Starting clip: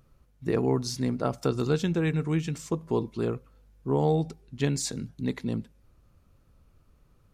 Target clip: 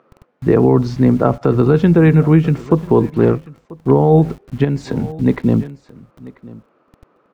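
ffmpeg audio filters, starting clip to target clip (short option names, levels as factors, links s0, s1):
-filter_complex "[0:a]acrossover=split=270[s0][s1];[s0]aeval=exprs='val(0)*gte(abs(val(0)),0.00251)':c=same[s2];[s1]lowpass=1600[s3];[s2][s3]amix=inputs=2:normalize=0,asettb=1/sr,asplit=3[s4][s5][s6];[s4]atrim=end=3.184[s7];[s5]atrim=start=3.18:end=3.91,asetpts=PTS-STARTPTS,afade=t=in:d=0.004:c=qsin,afade=t=out:st=0.726:d=0.004:c=qsin,aeval=exprs='0.141*(cos(1*acos(clip(val(0)/0.141,-1,1)))-cos(1*PI/2))+0.00708*(cos(7*acos(clip(val(0)/0.141,-1,1)))-cos(7*PI/2))':c=same[s8];[s6]atrim=start=3.906[s9];[s7][s8]acrossfade=d=0.004:c1=hsin:c2=qsin[s10];[s10][s9]acrossfade=d=0.004:c1=qsin:c2=hsin,aecho=1:1:989:0.0841,asettb=1/sr,asplit=3[s11][s12][s13];[s11]atrim=end=4.644[s14];[s12]atrim=start=4.64:end=5.26,asetpts=PTS-STARTPTS,afade=t=in:d=0.004:c=qsin,afade=t=out:st=0.616:d=0.004:c=qsin,acompressor=threshold=0.0316:ratio=5[s15];[s13]atrim=start=5.256[s16];[s14][s15]acrossfade=d=0.004:c1=hsin:c2=qsin[s17];[s17][s16]acrossfade=d=0.004:c1=qsin:c2=hsin,alimiter=level_in=7.5:limit=0.891:release=50:level=0:latency=1,volume=0.891"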